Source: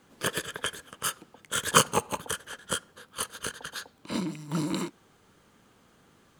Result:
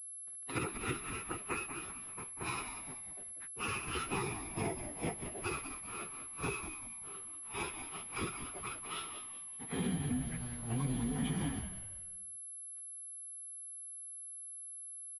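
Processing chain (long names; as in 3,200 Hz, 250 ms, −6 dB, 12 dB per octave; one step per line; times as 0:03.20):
bit-depth reduction 8 bits, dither none
speed change −20%
dead-zone distortion −46 dBFS
time stretch by phase vocoder 1.9×
high-frequency loss of the air 260 metres
downward compressor 12 to 1, threshold −37 dBFS, peak gain reduction 19.5 dB
dynamic equaliser 900 Hz, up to −8 dB, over −56 dBFS, Q 1.1
echo with shifted repeats 191 ms, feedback 38%, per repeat −85 Hz, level −9 dB
switching amplifier with a slow clock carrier 11,000 Hz
level +6 dB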